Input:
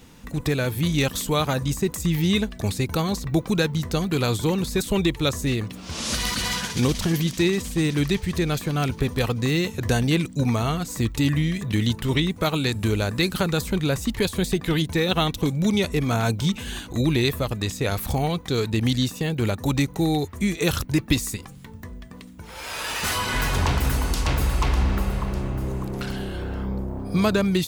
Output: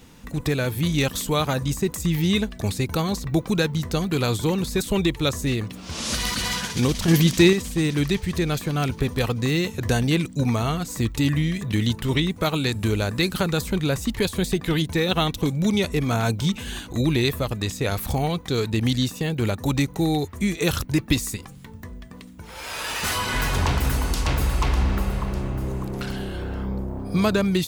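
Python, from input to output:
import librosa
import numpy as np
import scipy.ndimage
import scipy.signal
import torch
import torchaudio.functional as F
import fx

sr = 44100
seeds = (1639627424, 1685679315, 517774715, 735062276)

y = fx.edit(x, sr, fx.clip_gain(start_s=7.08, length_s=0.45, db=6.0), tone=tone)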